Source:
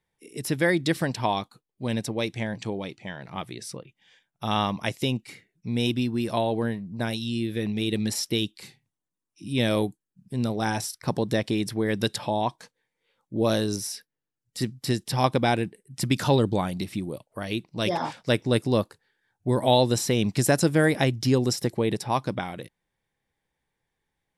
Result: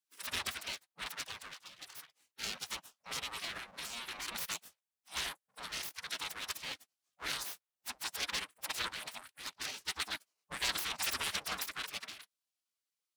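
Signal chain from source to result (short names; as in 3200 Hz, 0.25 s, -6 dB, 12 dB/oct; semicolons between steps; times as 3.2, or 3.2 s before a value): time stretch by phase-locked vocoder 0.54×; full-wave rectifier; spectral gate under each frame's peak -30 dB weak; gain +1 dB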